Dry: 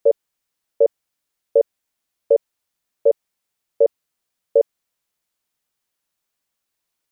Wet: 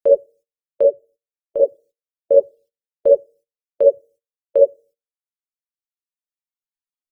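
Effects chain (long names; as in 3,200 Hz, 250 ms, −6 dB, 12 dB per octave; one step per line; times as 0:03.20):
0:00.84–0:01.60: tuned comb filter 64 Hz, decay 0.2 s, harmonics all, mix 90%
0:02.34–0:03.10: parametric band 72 Hz +6.5 dB 2.9 octaves
rectangular room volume 380 cubic metres, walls furnished, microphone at 2.7 metres
reverb reduction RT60 0.88 s
noise gate −43 dBFS, range −19 dB
reverb reduction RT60 2 s
level −1 dB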